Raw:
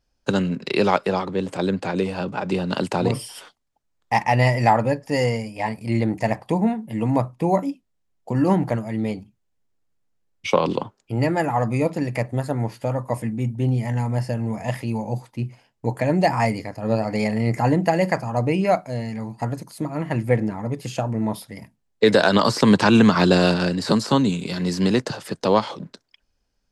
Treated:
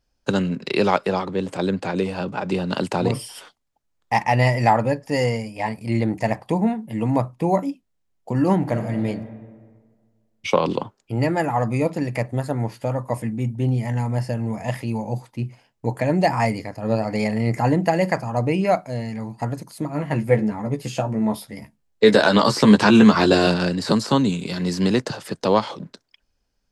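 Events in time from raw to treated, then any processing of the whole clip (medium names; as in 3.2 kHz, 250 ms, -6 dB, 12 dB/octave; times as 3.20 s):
8.58–9.06 s: reverb throw, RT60 1.7 s, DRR 5.5 dB
19.92–23.47 s: doubling 14 ms -5.5 dB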